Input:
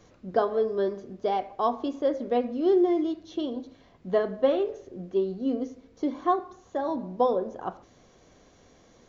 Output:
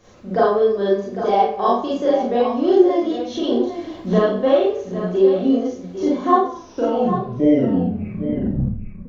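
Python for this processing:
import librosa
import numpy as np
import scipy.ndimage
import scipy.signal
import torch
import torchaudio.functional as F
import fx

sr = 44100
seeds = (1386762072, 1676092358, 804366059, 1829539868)

p1 = fx.tape_stop_end(x, sr, length_s=2.73)
p2 = fx.recorder_agc(p1, sr, target_db=-18.0, rise_db_per_s=14.0, max_gain_db=30)
p3 = fx.peak_eq(p2, sr, hz=170.0, db=-2.5, octaves=1.2)
p4 = p3 + fx.echo_single(p3, sr, ms=802, db=-10.0, dry=0)
p5 = fx.rev_schroeder(p4, sr, rt60_s=0.37, comb_ms=30, drr_db=-6.5)
y = F.gain(torch.from_numpy(p5), 1.5).numpy()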